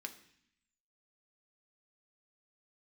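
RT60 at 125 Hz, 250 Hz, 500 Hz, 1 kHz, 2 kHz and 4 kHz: 0.95 s, 0.95 s, 0.60 s, 0.65 s, 0.90 s, 0.85 s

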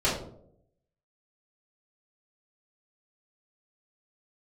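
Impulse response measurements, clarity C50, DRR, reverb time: 4.0 dB, -12.0 dB, 0.70 s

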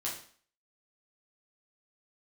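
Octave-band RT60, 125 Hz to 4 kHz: 0.40 s, 0.50 s, 0.45 s, 0.50 s, 0.50 s, 0.45 s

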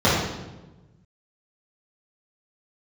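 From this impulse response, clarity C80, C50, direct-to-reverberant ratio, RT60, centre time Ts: 3.5 dB, 0.0 dB, -10.5 dB, 1.1 s, 71 ms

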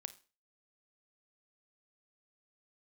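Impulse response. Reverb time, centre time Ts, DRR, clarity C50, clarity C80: 0.35 s, 3 ms, 13.0 dB, 16.5 dB, 21.5 dB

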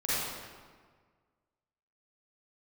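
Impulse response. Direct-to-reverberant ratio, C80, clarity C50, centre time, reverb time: -11.0 dB, -2.0 dB, -7.0 dB, 133 ms, 1.6 s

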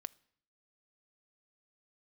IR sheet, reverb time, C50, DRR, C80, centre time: 0.65 s, 24.0 dB, 13.5 dB, 27.5 dB, 1 ms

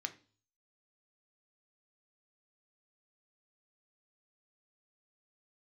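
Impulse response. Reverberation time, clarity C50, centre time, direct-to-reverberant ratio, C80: 0.40 s, 16.0 dB, 6 ms, 6.5 dB, 21.5 dB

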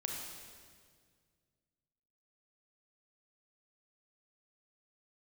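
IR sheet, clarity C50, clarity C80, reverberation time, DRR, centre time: 1.5 dB, 3.0 dB, 1.9 s, 0.0 dB, 79 ms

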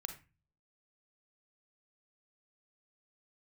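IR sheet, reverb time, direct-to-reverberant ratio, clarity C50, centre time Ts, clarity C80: 0.30 s, 6.5 dB, 9.0 dB, 11 ms, 15.0 dB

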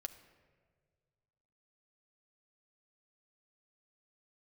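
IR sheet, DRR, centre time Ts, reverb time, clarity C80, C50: 7.0 dB, 10 ms, 1.7 s, 14.0 dB, 12.5 dB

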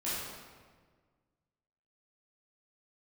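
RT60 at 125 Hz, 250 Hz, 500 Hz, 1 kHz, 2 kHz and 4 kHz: 2.0 s, 1.8 s, 1.7 s, 1.5 s, 1.3 s, 1.1 s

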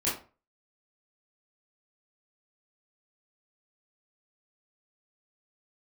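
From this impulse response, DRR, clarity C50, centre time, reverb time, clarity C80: -9.0 dB, 6.0 dB, 36 ms, 0.35 s, 12.0 dB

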